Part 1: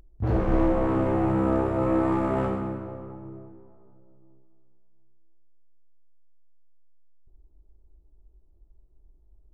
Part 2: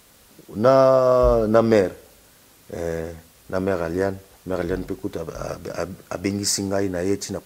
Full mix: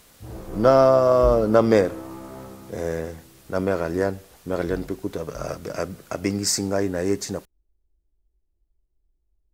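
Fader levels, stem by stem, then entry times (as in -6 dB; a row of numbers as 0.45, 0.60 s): -13.5, -0.5 dB; 0.00, 0.00 s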